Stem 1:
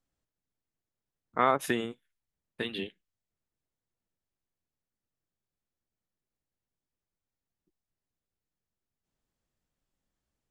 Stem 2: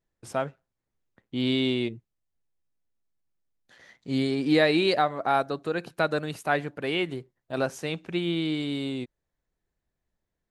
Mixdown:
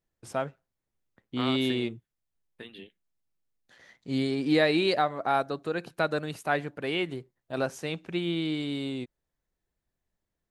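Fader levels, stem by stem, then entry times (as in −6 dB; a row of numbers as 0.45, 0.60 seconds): −10.5, −2.0 decibels; 0.00, 0.00 seconds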